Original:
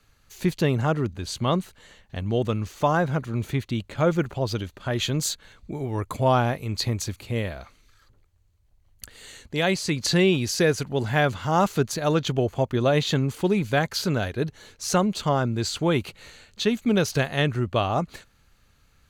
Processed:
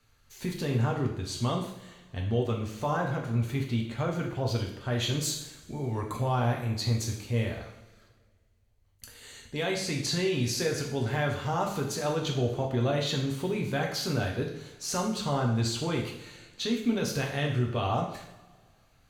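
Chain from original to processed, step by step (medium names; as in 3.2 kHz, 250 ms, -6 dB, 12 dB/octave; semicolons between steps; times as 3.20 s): peak limiter -16 dBFS, peak gain reduction 6.5 dB; two-slope reverb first 0.66 s, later 2 s, DRR -0.5 dB; trim -6.5 dB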